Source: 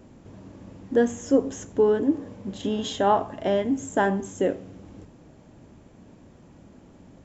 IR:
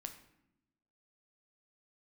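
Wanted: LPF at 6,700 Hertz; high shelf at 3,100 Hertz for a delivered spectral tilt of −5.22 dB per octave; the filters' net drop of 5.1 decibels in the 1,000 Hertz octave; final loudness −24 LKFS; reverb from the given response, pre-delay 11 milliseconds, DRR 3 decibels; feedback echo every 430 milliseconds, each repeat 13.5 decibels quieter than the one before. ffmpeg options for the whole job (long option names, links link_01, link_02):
-filter_complex "[0:a]lowpass=6700,equalizer=frequency=1000:width_type=o:gain=-6,highshelf=frequency=3100:gain=-8,aecho=1:1:430|860:0.211|0.0444,asplit=2[link_01][link_02];[1:a]atrim=start_sample=2205,adelay=11[link_03];[link_02][link_03]afir=irnorm=-1:irlink=0,volume=0.5dB[link_04];[link_01][link_04]amix=inputs=2:normalize=0"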